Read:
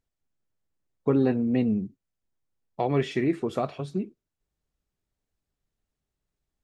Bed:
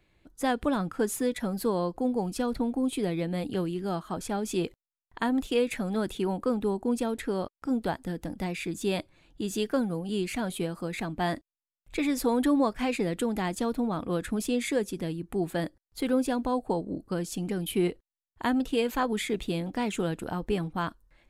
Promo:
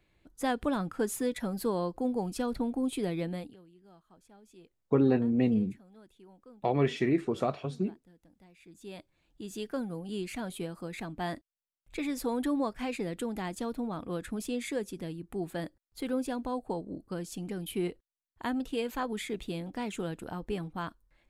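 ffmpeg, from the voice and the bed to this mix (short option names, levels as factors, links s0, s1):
-filter_complex "[0:a]adelay=3850,volume=0.794[s0];[1:a]volume=7.5,afade=t=out:st=3.27:d=0.29:silence=0.0668344,afade=t=in:st=8.55:d=1.47:silence=0.0944061[s1];[s0][s1]amix=inputs=2:normalize=0"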